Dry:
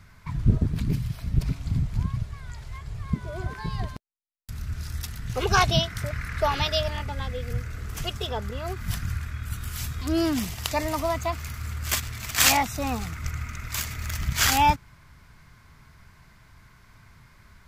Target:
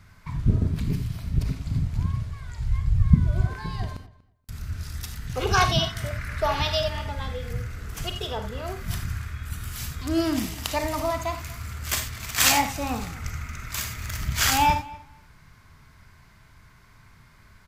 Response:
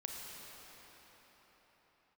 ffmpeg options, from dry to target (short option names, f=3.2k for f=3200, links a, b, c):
-filter_complex "[1:a]atrim=start_sample=2205,atrim=end_sample=4410[a];[0:a][a]afir=irnorm=-1:irlink=0,asplit=3[b][c][d];[b]afade=t=out:st=2.59:d=0.02[e];[c]asubboost=boost=8:cutoff=180,afade=t=in:st=2.59:d=0.02,afade=t=out:st=3.44:d=0.02[f];[d]afade=t=in:st=3.44:d=0.02[g];[e][f][g]amix=inputs=3:normalize=0,asplit=2[h][i];[i]adelay=239,lowpass=f=3k:p=1,volume=-20dB,asplit=2[j][k];[k]adelay=239,lowpass=f=3k:p=1,volume=0.15[l];[h][j][l]amix=inputs=3:normalize=0,volume=3dB"